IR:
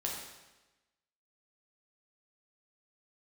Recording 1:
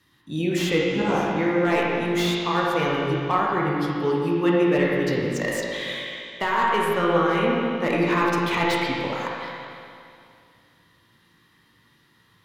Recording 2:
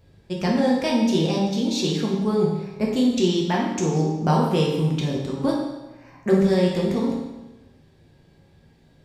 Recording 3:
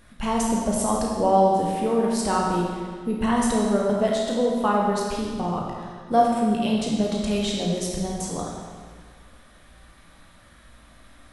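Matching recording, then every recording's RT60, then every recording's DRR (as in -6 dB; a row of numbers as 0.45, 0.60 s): 2; 2.5, 1.1, 1.8 s; -4.5, -3.0, -3.0 dB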